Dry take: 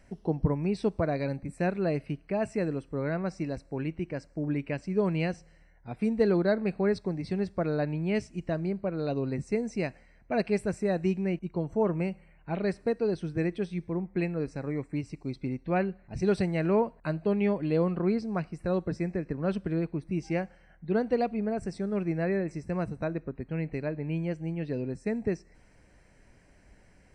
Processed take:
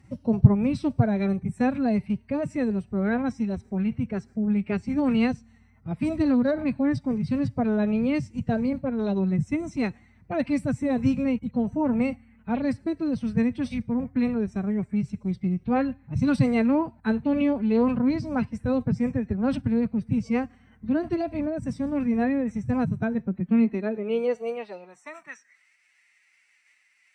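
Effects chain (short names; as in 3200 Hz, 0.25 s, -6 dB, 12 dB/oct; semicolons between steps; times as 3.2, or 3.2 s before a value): resonant low shelf 210 Hz +7 dB, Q 1.5; formant-preserving pitch shift +6 st; high-pass sweep 110 Hz -> 2200 Hz, 22.98–25.71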